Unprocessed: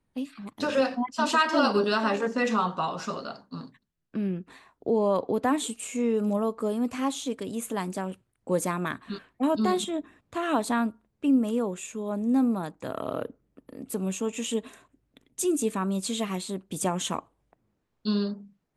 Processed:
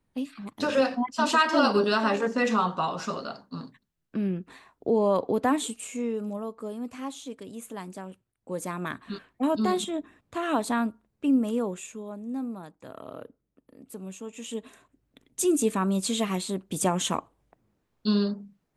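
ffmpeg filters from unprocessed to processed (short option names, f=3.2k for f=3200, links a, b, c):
-af "volume=20dB,afade=t=out:st=5.47:d=0.84:silence=0.375837,afade=t=in:st=8.55:d=0.48:silence=0.446684,afade=t=out:st=11.72:d=0.45:silence=0.354813,afade=t=in:st=14.32:d=1.21:silence=0.251189"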